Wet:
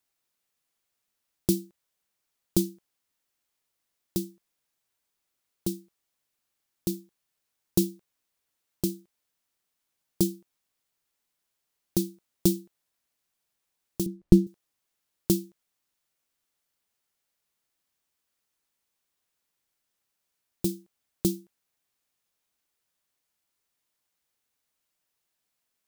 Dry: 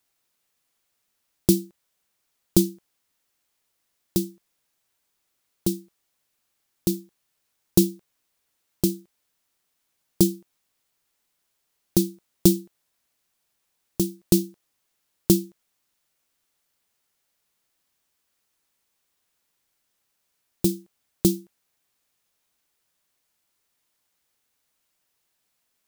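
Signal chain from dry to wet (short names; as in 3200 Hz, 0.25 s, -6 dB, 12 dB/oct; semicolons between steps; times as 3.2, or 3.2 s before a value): 14.06–14.47 tilt -4 dB/oct; gain -6 dB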